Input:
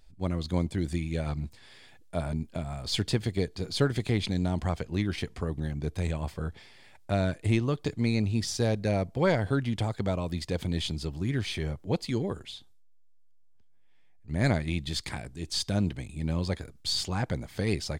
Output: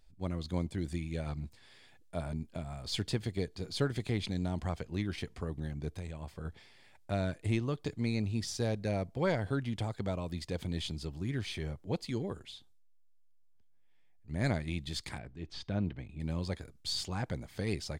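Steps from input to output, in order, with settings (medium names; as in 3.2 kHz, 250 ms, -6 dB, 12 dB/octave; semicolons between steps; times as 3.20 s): 5.88–6.45 s: compression 2.5:1, threshold -34 dBFS, peak gain reduction 7 dB; 15.18–16.20 s: low-pass 2.8 kHz 12 dB/octave; trim -6 dB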